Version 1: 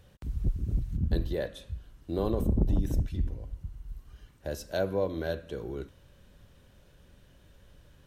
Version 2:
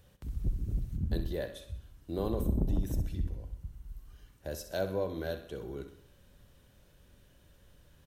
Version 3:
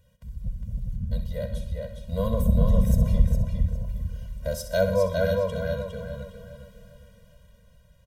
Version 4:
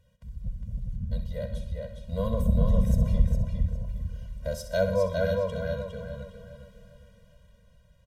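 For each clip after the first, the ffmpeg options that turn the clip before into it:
-filter_complex "[0:a]highshelf=f=8.2k:g=8,asplit=2[a][b];[b]aecho=0:1:64|128|192|256|320:0.282|0.144|0.0733|0.0374|0.0191[c];[a][c]amix=inputs=2:normalize=0,volume=-4dB"
-filter_complex "[0:a]dynaudnorm=f=510:g=7:m=11dB,asplit=2[a][b];[b]adelay=408,lowpass=f=5k:p=1,volume=-3dB,asplit=2[c][d];[d]adelay=408,lowpass=f=5k:p=1,volume=0.35,asplit=2[e][f];[f]adelay=408,lowpass=f=5k:p=1,volume=0.35,asplit=2[g][h];[h]adelay=408,lowpass=f=5k:p=1,volume=0.35,asplit=2[i][j];[j]adelay=408,lowpass=f=5k:p=1,volume=0.35[k];[a][c][e][g][i][k]amix=inputs=6:normalize=0,afftfilt=real='re*eq(mod(floor(b*sr/1024/230),2),0)':imag='im*eq(mod(floor(b*sr/1024/230),2),0)':win_size=1024:overlap=0.75"
-af "highshelf=f=12k:g=-12,volume=-2.5dB"

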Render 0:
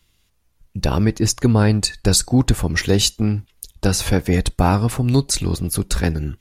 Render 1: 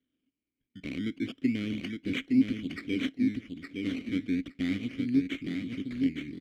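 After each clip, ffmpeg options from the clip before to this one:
-filter_complex "[0:a]acrusher=samples=18:mix=1:aa=0.000001:lfo=1:lforange=18:lforate=0.33,asplit=3[a][b][c];[a]bandpass=f=270:t=q:w=8,volume=0dB[d];[b]bandpass=f=2.29k:t=q:w=8,volume=-6dB[e];[c]bandpass=f=3.01k:t=q:w=8,volume=-9dB[f];[d][e][f]amix=inputs=3:normalize=0,aecho=1:1:864|1728|2592:0.596|0.0893|0.0134,volume=-3dB"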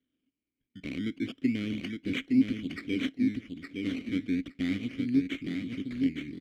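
-af anull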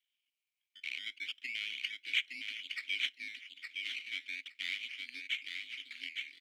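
-af "highpass=f=2.6k:t=q:w=2.3"

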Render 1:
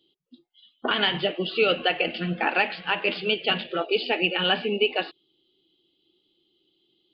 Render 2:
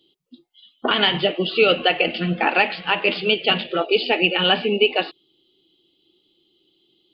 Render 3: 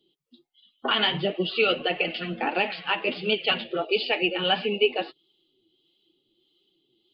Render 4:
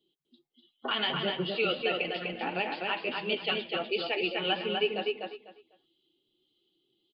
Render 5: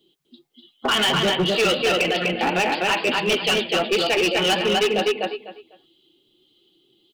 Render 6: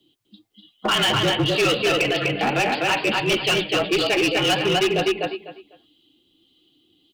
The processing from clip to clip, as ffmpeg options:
-af "equalizer=f=1.6k:w=5.5:g=-4.5,volume=5.5dB"
-filter_complex "[0:a]flanger=delay=4.5:depth=4.8:regen=29:speed=1.5:shape=triangular,acrossover=split=610[a][b];[a]aeval=exprs='val(0)*(1-0.5/2+0.5/2*cos(2*PI*1.6*n/s))':c=same[c];[b]aeval=exprs='val(0)*(1-0.5/2-0.5/2*cos(2*PI*1.6*n/s))':c=same[d];[c][d]amix=inputs=2:normalize=0"
-filter_complex "[0:a]asplit=2[a][b];[b]adelay=249,lowpass=f=4.1k:p=1,volume=-3dB,asplit=2[c][d];[d]adelay=249,lowpass=f=4.1k:p=1,volume=0.22,asplit=2[e][f];[f]adelay=249,lowpass=f=4.1k:p=1,volume=0.22[g];[a][c][e][g]amix=inputs=4:normalize=0,volume=-7dB"
-af "acontrast=22,asoftclip=type=hard:threshold=-24.5dB,volume=8.5dB"
-af "afreqshift=-37"

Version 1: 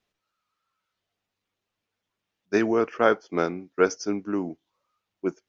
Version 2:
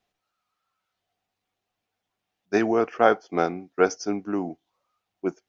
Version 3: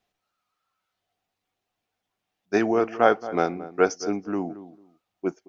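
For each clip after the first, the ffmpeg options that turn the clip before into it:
-af "equalizer=f=740:t=o:w=0.22:g=11.5"
-filter_complex "[0:a]asplit=2[a][b];[b]adelay=223,lowpass=f=1k:p=1,volume=-14dB,asplit=2[c][d];[d]adelay=223,lowpass=f=1k:p=1,volume=0.21[e];[a][c][e]amix=inputs=3:normalize=0"

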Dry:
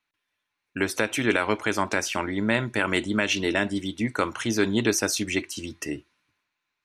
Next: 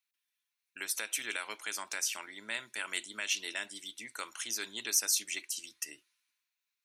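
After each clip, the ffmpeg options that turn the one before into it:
-af "highpass=95,aderivative"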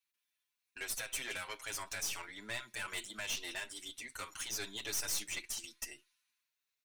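-filter_complex "[0:a]aeval=exprs='(tanh(50.1*val(0)+0.45)-tanh(0.45))/50.1':c=same,asplit=2[a][b];[b]adelay=6.5,afreqshift=0.38[c];[a][c]amix=inputs=2:normalize=1,volume=4dB"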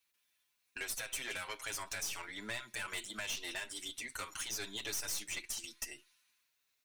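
-af "acompressor=threshold=-51dB:ratio=2,volume=7.5dB"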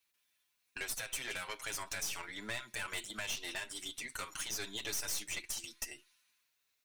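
-af "aeval=exprs='0.0473*(cos(1*acos(clip(val(0)/0.0473,-1,1)))-cos(1*PI/2))+0.00376*(cos(4*acos(clip(val(0)/0.0473,-1,1)))-cos(4*PI/2))':c=same"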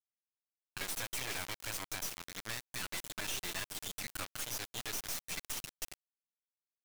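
-af "acrusher=bits=4:dc=4:mix=0:aa=0.000001,volume=6dB"

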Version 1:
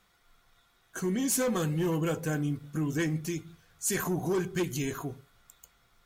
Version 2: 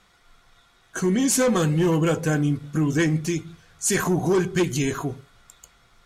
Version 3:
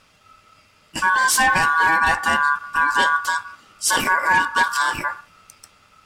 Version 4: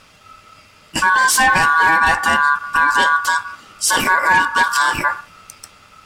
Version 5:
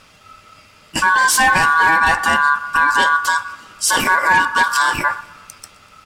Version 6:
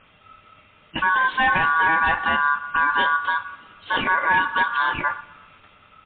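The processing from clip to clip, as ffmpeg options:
-af "lowpass=9.6k,volume=8.5dB"
-af "aeval=exprs='val(0)*sin(2*PI*1300*n/s)':c=same,volume=6dB"
-af "acontrast=32,alimiter=limit=-8.5dB:level=0:latency=1:release=238,volume=2.5dB"
-af "aecho=1:1:123|246|369|492:0.0708|0.0396|0.0222|0.0124"
-af "volume=-5dB" -ar 8000 -c:a libmp3lame -b:a 32k

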